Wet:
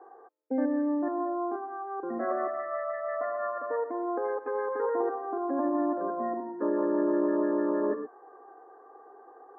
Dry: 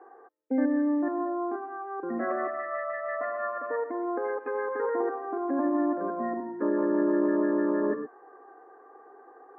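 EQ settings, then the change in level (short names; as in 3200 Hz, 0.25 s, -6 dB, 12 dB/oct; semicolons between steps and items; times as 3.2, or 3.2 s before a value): HPF 510 Hz 6 dB/oct; LPF 1100 Hz 12 dB/oct; +3.5 dB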